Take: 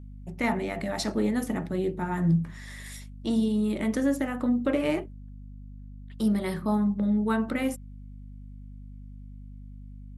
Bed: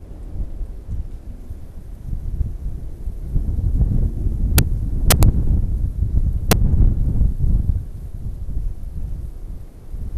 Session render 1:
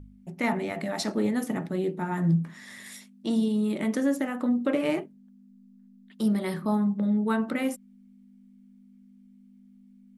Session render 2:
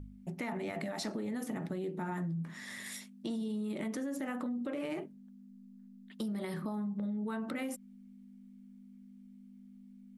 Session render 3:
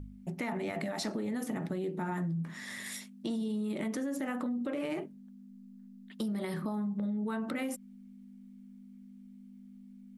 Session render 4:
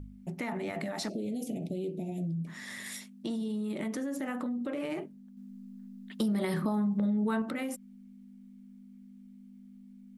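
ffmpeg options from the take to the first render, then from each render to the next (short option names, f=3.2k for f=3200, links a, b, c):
-af "bandreject=f=50:t=h:w=4,bandreject=f=100:t=h:w=4,bandreject=f=150:t=h:w=4"
-af "alimiter=level_in=1.5dB:limit=-24dB:level=0:latency=1:release=64,volume=-1.5dB,acompressor=threshold=-34dB:ratio=6"
-af "volume=2.5dB"
-filter_complex "[0:a]asplit=3[a][b][c];[a]afade=t=out:st=1.08:d=0.02[d];[b]asuperstop=centerf=1300:order=12:qfactor=0.79,afade=t=in:st=1.08:d=0.02,afade=t=out:st=2.46:d=0.02[e];[c]afade=t=in:st=2.46:d=0.02[f];[d][e][f]amix=inputs=3:normalize=0,asplit=3[g][h][i];[g]atrim=end=5.372[j];[h]atrim=start=5.368:end=7.422,asetpts=PTS-STARTPTS,volume=5dB[k];[i]atrim=start=7.418[l];[j][k]acrossfade=d=0.004:c1=hsin:c2=hsin[m];[m][l]acrossfade=d=0.004:c1=hsin:c2=hsin"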